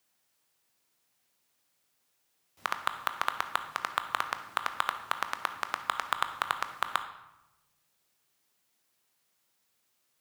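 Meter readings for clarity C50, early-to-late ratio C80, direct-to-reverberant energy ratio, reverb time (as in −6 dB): 10.0 dB, 12.5 dB, 8.0 dB, 0.95 s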